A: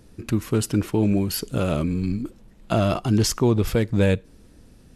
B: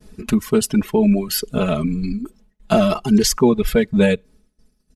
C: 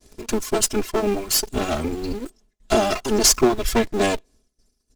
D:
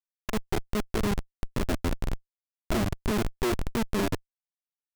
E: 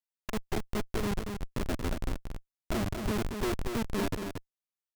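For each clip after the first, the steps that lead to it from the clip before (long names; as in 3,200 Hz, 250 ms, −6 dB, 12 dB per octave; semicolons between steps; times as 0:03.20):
reverb reduction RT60 1.7 s; downward expander −50 dBFS; comb filter 4.7 ms, depth 98%; level +3.5 dB
lower of the sound and its delayed copy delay 2.9 ms; parametric band 6,500 Hz +10 dB 1.3 octaves; in parallel at −3.5 dB: bit reduction 6 bits; on the sum: level −5.5 dB
delay with a high-pass on its return 188 ms, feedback 75%, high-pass 2,800 Hz, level −7.5 dB; treble cut that deepens with the level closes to 490 Hz, closed at −17 dBFS; comparator with hysteresis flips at −22 dBFS
single-tap delay 230 ms −6 dB; level −4.5 dB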